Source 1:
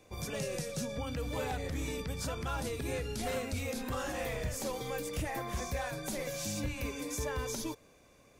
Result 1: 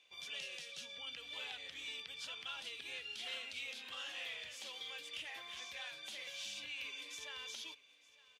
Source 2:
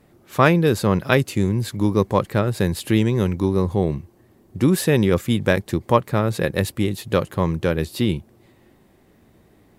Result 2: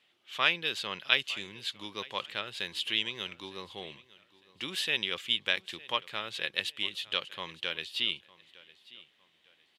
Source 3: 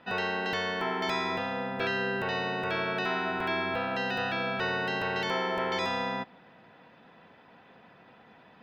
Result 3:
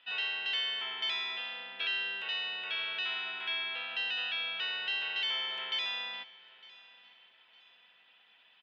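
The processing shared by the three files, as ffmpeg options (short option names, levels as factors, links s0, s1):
-filter_complex "[0:a]bandpass=f=3100:t=q:w=4.7:csg=0,asplit=2[s0][s1];[s1]aecho=0:1:907|1814:0.0891|0.0294[s2];[s0][s2]amix=inputs=2:normalize=0,volume=2.37"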